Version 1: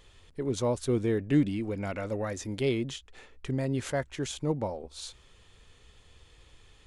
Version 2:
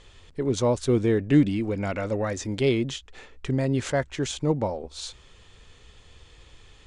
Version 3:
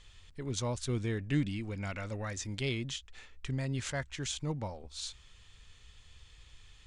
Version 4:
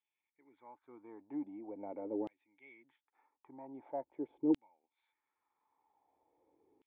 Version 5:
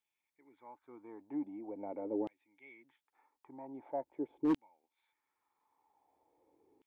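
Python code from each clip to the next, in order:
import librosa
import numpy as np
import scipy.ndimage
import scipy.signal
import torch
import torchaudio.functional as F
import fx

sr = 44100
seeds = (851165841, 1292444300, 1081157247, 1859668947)

y1 = scipy.signal.sosfilt(scipy.signal.butter(4, 8600.0, 'lowpass', fs=sr, output='sos'), x)
y1 = y1 * librosa.db_to_amplitude(5.5)
y2 = fx.peak_eq(y1, sr, hz=430.0, db=-12.5, octaves=2.5)
y2 = y2 * librosa.db_to_amplitude(-3.5)
y3 = fx.formant_cascade(y2, sr, vowel='u')
y3 = fx.filter_lfo_highpass(y3, sr, shape='saw_down', hz=0.44, low_hz=370.0, high_hz=3000.0, q=3.1)
y3 = y3 * librosa.db_to_amplitude(10.5)
y4 = np.clip(y3, -10.0 ** (-27.5 / 20.0), 10.0 ** (-27.5 / 20.0))
y4 = y4 * librosa.db_to_amplitude(2.0)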